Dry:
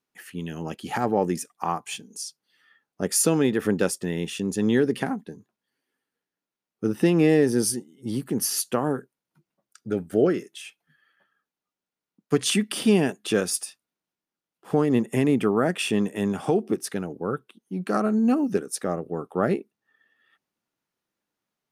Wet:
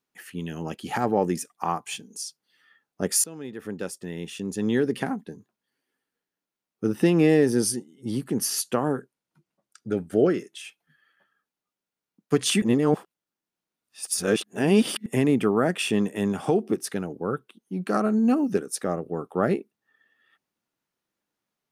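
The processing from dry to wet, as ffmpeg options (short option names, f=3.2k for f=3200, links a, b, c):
-filter_complex "[0:a]asettb=1/sr,asplit=3[a][b][c];[a]atrim=end=7.564[d];[b]atrim=start=7.56:end=10.64,asetpts=PTS-STARTPTS,afade=t=in:d=0.004:c=qsin,afade=t=out:st=3.076:d=0.004:c=qsin,lowpass=12k[e];[c]atrim=start=10.636[f];[d][e]acrossfade=d=0.004:c1=hsin:c2=qsin[g];[g][f]acrossfade=d=0.004:c1=qsin:c2=hsin,asplit=4[h][i][j][k];[h]atrim=end=3.24,asetpts=PTS-STARTPTS,afade=t=out:st=3.236:d=0.004:c=hsin:silence=0.0749894[l];[i]atrim=start=3.24:end=12.622,asetpts=PTS-STARTPTS,afade=t=in:d=2.05:silence=0.0749894[m];[j]atrim=start=12.618:end=15.062,asetpts=PTS-STARTPTS,areverse[n];[k]atrim=start=15.058[o];[l][m]concat=n=2:v=0:a=1[p];[p][n]acrossfade=d=0.004:c1=hsin:c2=hsin[q];[q][o]acrossfade=d=0.004:c1=hsin:c2=hsin"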